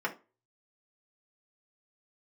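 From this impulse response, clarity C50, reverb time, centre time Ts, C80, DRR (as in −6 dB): 15.0 dB, 0.30 s, 9 ms, 22.0 dB, −3.5 dB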